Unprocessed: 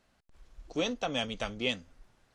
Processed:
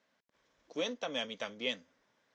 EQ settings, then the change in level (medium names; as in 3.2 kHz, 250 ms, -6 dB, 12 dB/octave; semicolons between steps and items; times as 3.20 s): cabinet simulation 320–5900 Hz, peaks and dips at 360 Hz -8 dB, 760 Hz -9 dB, 1.3 kHz -6 dB, 2.7 kHz -6 dB, 4.4 kHz -7 dB; 0.0 dB